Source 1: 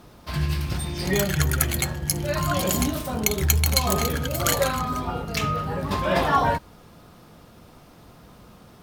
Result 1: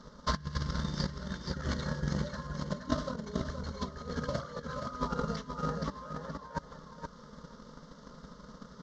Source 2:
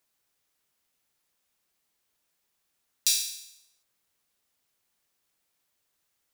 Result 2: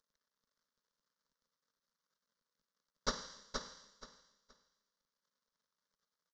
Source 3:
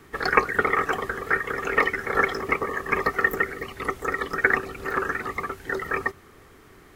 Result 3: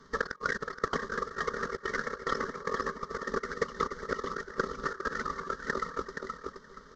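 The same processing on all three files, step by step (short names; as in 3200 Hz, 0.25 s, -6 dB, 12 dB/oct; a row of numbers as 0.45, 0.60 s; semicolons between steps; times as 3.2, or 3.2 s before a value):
CVSD 32 kbps; fixed phaser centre 500 Hz, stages 8; negative-ratio compressor -33 dBFS, ratio -0.5; feedback echo 0.473 s, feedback 25%, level -5 dB; transient shaper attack +12 dB, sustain -2 dB; gain -6.5 dB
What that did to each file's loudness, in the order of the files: -13.0, -16.5, -10.0 LU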